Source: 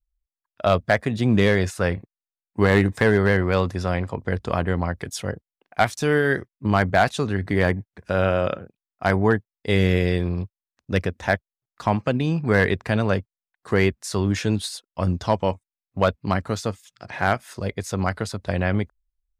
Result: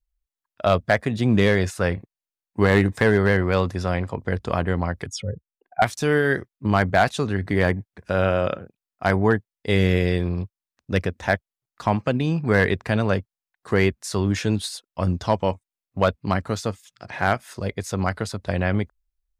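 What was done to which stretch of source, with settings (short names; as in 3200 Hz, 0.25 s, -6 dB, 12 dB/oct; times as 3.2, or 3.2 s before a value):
5.06–5.82 spectral contrast raised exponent 2.4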